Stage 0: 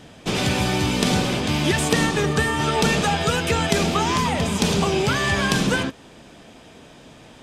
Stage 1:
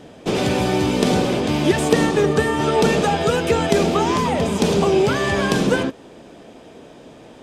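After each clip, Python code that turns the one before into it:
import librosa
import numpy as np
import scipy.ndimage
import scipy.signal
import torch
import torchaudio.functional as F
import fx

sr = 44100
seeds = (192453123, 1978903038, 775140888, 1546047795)

y = fx.peak_eq(x, sr, hz=430.0, db=10.0, octaves=2.1)
y = F.gain(torch.from_numpy(y), -3.0).numpy()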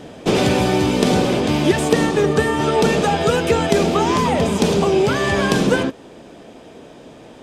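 y = fx.rider(x, sr, range_db=4, speed_s=0.5)
y = F.gain(torch.from_numpy(y), 1.5).numpy()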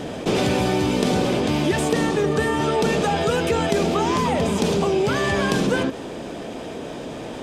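y = fx.env_flatten(x, sr, amount_pct=50)
y = F.gain(torch.from_numpy(y), -6.5).numpy()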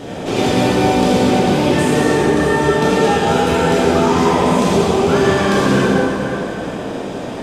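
y = fx.rev_plate(x, sr, seeds[0], rt60_s=3.7, hf_ratio=0.55, predelay_ms=0, drr_db=-8.0)
y = F.gain(torch.from_numpy(y), -2.0).numpy()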